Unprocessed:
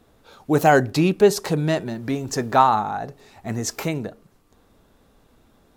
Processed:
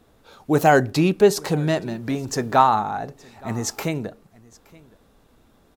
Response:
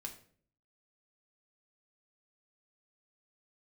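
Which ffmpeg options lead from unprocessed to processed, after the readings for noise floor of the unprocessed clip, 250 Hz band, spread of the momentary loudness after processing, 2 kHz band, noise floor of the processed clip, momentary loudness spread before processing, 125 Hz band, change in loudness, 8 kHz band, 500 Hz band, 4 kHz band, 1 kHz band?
−59 dBFS, 0.0 dB, 14 LU, 0.0 dB, −58 dBFS, 14 LU, 0.0 dB, 0.0 dB, 0.0 dB, 0.0 dB, 0.0 dB, 0.0 dB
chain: -af "aecho=1:1:871:0.0631"

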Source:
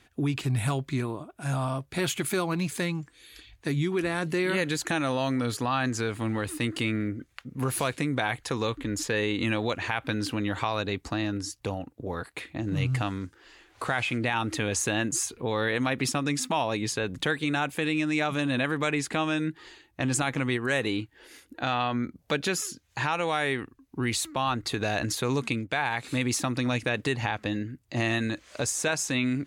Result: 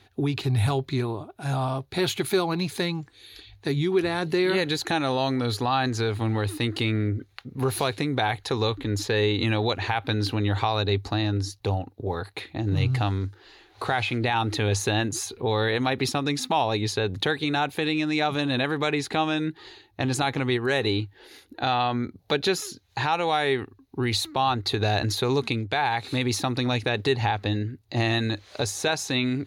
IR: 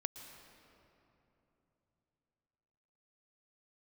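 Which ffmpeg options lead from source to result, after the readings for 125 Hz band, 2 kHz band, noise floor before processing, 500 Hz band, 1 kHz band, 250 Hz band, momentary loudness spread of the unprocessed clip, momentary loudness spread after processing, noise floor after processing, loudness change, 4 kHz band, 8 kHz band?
+4.5 dB, +0.5 dB, −63 dBFS, +4.5 dB, +4.5 dB, +1.5 dB, 7 LU, 6 LU, −58 dBFS, +3.0 dB, +5.5 dB, −3.0 dB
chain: -af "equalizer=frequency=100:width_type=o:width=0.33:gain=12,equalizer=frequency=400:width_type=o:width=0.33:gain=8,equalizer=frequency=800:width_type=o:width=0.33:gain=8,equalizer=frequency=4000:width_type=o:width=0.33:gain=10,equalizer=frequency=8000:width_type=o:width=0.33:gain=-9"

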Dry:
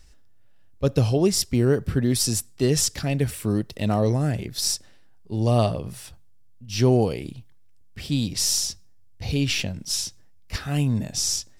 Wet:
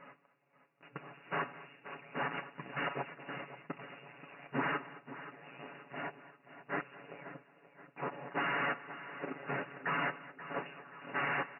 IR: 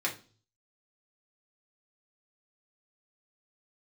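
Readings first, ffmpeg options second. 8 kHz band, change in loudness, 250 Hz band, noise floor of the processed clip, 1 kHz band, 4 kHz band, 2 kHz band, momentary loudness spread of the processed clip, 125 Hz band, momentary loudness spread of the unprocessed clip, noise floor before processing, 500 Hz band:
below −40 dB, −16.0 dB, −20.5 dB, −69 dBFS, −3.5 dB, −23.0 dB, 0.0 dB, 17 LU, −27.0 dB, 12 LU, −48 dBFS, −17.5 dB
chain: -filter_complex "[0:a]afftfilt=real='real(if(lt(b,736),b+184*(1-2*mod(floor(b/184),2)),b),0)':imag='imag(if(lt(b,736),b+184*(1-2*mod(floor(b/184),2)),b),0)':win_size=2048:overlap=0.75,alimiter=limit=-18dB:level=0:latency=1:release=76,aeval=exprs='(tanh(141*val(0)+0.05)-tanh(0.05))/141':channel_layout=same,asplit=2[link_01][link_02];[link_02]aecho=0:1:216:0.126[link_03];[link_01][link_03]amix=inputs=2:normalize=0,afftfilt=real='re*between(b*sr/4096,120,2900)':imag='im*between(b*sr/4096,120,2900)':win_size=4096:overlap=0.75,tiltshelf=frequency=970:gain=5,aecho=1:1:7.1:0.7,asplit=2[link_04][link_05];[link_05]aecho=0:1:530|1060|1590|2120:0.211|0.0972|0.0447|0.0206[link_06];[link_04][link_06]amix=inputs=2:normalize=0,volume=12dB"

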